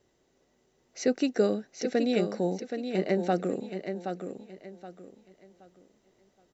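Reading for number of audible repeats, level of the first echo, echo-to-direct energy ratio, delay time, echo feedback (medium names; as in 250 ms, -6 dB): 3, -7.5 dB, -7.0 dB, 773 ms, 29%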